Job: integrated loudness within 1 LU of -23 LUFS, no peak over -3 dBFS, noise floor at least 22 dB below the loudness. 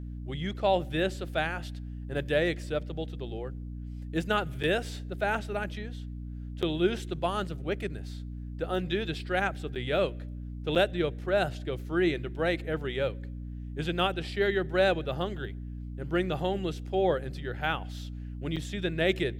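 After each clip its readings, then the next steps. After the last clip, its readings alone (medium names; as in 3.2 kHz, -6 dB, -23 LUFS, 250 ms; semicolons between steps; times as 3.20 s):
dropouts 5; longest dropout 7.1 ms; hum 60 Hz; highest harmonic 300 Hz; hum level -36 dBFS; loudness -31.0 LUFS; peak level -12.5 dBFS; loudness target -23.0 LUFS
-> interpolate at 4.63/6.62/9.75/10.75/18.56 s, 7.1 ms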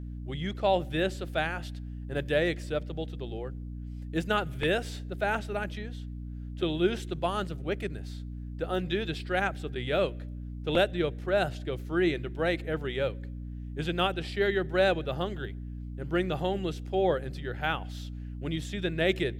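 dropouts 0; hum 60 Hz; highest harmonic 300 Hz; hum level -36 dBFS
-> de-hum 60 Hz, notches 5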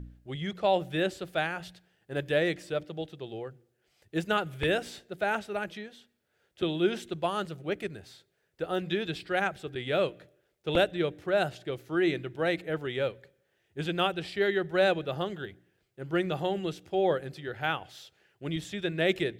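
hum not found; loudness -31.0 LUFS; peak level -12.0 dBFS; loudness target -23.0 LUFS
-> trim +8 dB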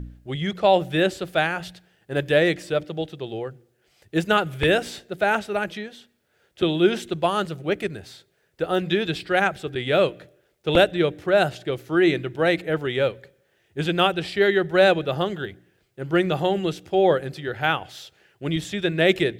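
loudness -23.0 LUFS; peak level -4.0 dBFS; noise floor -67 dBFS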